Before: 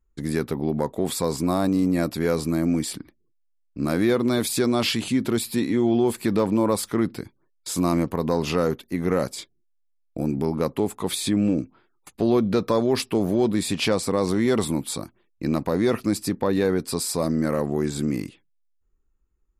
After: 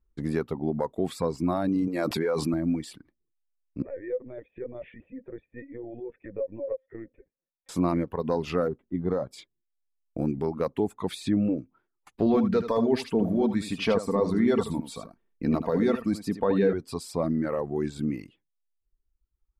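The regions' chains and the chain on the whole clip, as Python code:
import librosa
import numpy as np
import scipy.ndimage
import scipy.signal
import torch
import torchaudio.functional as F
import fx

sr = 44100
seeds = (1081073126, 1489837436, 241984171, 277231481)

y = fx.chain(x, sr, fx.highpass(hz=280.0, slope=6),
    fx.env_flatten(amount_pct=100), at=(1.87, 2.54))
y = fx.chain(y, sr, fx.formant_cascade(vowel='e'),
    fx.lpc_vocoder(seeds[0], excitation='pitch_kept', order=16), at=(3.82, 7.69))
y = fx.chain(y, sr, fx.spacing_loss(db_at_10k=32),
    fx.resample_linear(factor=8), at=(8.68, 9.31))
y = fx.chain(y, sr, fx.comb(ms=4.4, depth=0.42),
    fx.echo_single(ms=78, db=-5.0), at=(12.26, 16.73))
y = fx.lowpass(y, sr, hz=1700.0, slope=6)
y = fx.dereverb_blind(y, sr, rt60_s=1.5)
y = F.gain(torch.from_numpy(y), -1.5).numpy()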